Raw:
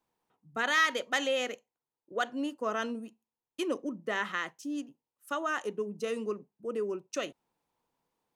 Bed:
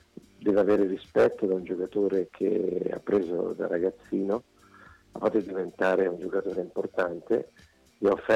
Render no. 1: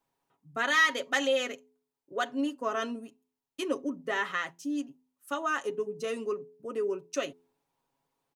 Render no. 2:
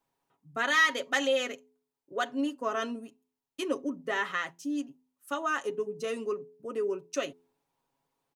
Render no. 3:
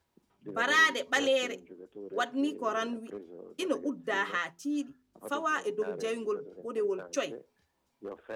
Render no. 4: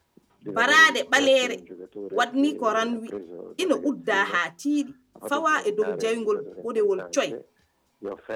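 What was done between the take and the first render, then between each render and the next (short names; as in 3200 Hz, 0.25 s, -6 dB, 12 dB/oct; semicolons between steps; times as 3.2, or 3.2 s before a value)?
comb 7.3 ms, depth 61%; de-hum 85.19 Hz, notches 5
nothing audible
add bed -18.5 dB
gain +8 dB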